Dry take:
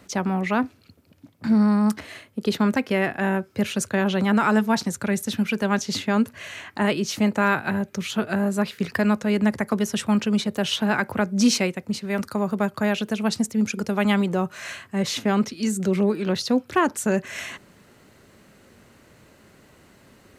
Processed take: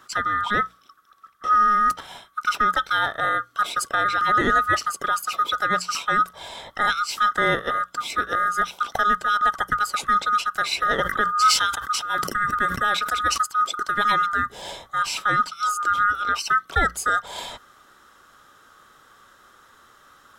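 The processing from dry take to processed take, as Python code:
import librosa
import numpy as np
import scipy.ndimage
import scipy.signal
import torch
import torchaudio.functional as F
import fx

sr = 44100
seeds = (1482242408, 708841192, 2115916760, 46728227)

y = fx.band_swap(x, sr, width_hz=1000)
y = fx.hum_notches(y, sr, base_hz=60, count=3)
y = fx.sustainer(y, sr, db_per_s=66.0, at=(10.97, 13.38))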